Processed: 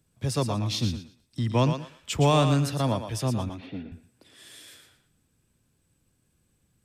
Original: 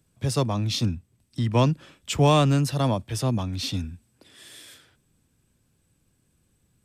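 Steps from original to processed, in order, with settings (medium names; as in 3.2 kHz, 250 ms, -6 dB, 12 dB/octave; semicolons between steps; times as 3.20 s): 3.49–3.92 s: cabinet simulation 200–2100 Hz, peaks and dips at 420 Hz +6 dB, 680 Hz +5 dB, 1.1 kHz -9 dB; thinning echo 116 ms, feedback 24%, high-pass 340 Hz, level -7 dB; trim -2.5 dB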